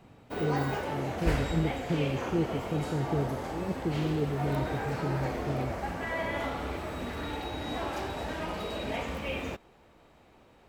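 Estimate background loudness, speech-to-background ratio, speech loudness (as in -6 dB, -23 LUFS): -34.5 LUFS, 1.0 dB, -33.5 LUFS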